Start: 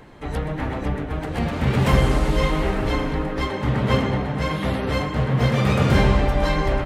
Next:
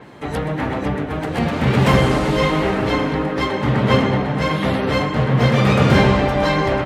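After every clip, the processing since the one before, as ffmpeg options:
-af "highpass=110,adynamicequalizer=threshold=0.00447:dfrequency=7000:dqfactor=0.7:tfrequency=7000:tqfactor=0.7:attack=5:release=100:ratio=0.375:range=3:mode=cutabove:tftype=highshelf,volume=1.88"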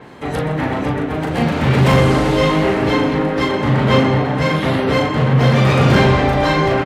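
-filter_complex "[0:a]asplit=2[s0][s1];[s1]adelay=38,volume=0.631[s2];[s0][s2]amix=inputs=2:normalize=0,asoftclip=type=tanh:threshold=0.562,volume=1.19"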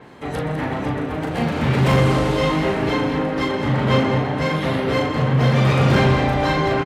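-af "aecho=1:1:203:0.299,volume=0.596"

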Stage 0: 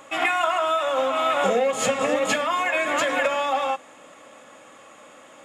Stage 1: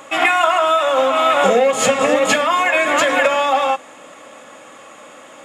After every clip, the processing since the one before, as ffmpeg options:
-af "lowshelf=f=73:g=-7,volume=2.37"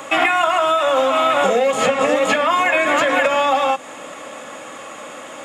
-filter_complex "[0:a]acrossover=split=250|3300[s0][s1][s2];[s0]acompressor=threshold=0.0112:ratio=4[s3];[s1]acompressor=threshold=0.0891:ratio=4[s4];[s2]acompressor=threshold=0.01:ratio=4[s5];[s3][s4][s5]amix=inputs=3:normalize=0,volume=2"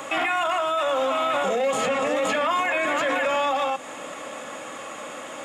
-af "alimiter=limit=0.2:level=0:latency=1:release=14,volume=0.794"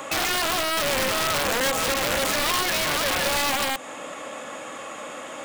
-af "aeval=exprs='(mod(7.94*val(0)+1,2)-1)/7.94':c=same"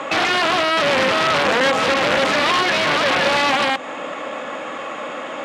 -af "highpass=140,lowpass=3500,volume=2.51"

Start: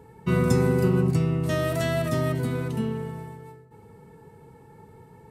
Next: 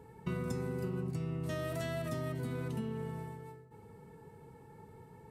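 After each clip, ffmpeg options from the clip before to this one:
-af "acompressor=threshold=0.0355:ratio=6,volume=0.562"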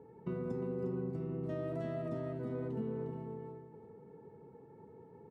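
-filter_complex "[0:a]bandpass=f=370:t=q:w=0.91:csg=0,asplit=2[s0][s1];[s1]aecho=0:1:355:0.376[s2];[s0][s2]amix=inputs=2:normalize=0,volume=1.26"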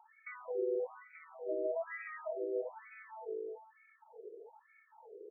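-filter_complex "[0:a]acrossover=split=950[s0][s1];[s1]aexciter=amount=12.9:drive=3.5:freq=2100[s2];[s0][s2]amix=inputs=2:normalize=0,afftfilt=real='re*between(b*sr/1024,430*pow(1800/430,0.5+0.5*sin(2*PI*1.1*pts/sr))/1.41,430*pow(1800/430,0.5+0.5*sin(2*PI*1.1*pts/sr))*1.41)':imag='im*between(b*sr/1024,430*pow(1800/430,0.5+0.5*sin(2*PI*1.1*pts/sr))/1.41,430*pow(1800/430,0.5+0.5*sin(2*PI*1.1*pts/sr))*1.41)':win_size=1024:overlap=0.75,volume=2.24"

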